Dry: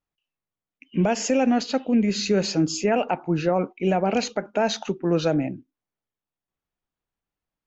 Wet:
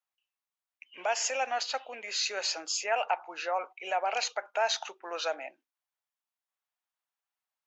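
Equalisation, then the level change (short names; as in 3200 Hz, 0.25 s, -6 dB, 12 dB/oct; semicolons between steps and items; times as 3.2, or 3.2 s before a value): HPF 710 Hz 24 dB/oct; -1.5 dB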